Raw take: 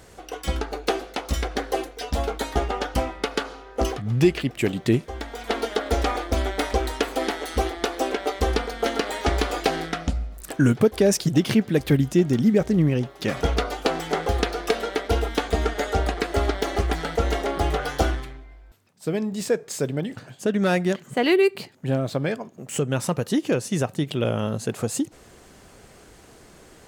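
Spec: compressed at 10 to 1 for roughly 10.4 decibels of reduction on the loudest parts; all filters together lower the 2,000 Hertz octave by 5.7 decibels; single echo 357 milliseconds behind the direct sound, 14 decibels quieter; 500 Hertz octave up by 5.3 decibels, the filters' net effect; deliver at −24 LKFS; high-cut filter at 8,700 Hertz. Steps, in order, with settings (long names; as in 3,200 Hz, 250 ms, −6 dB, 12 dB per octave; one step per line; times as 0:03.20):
low-pass filter 8,700 Hz
parametric band 500 Hz +7 dB
parametric band 2,000 Hz −8 dB
downward compressor 10 to 1, threshold −20 dBFS
single-tap delay 357 ms −14 dB
level +3 dB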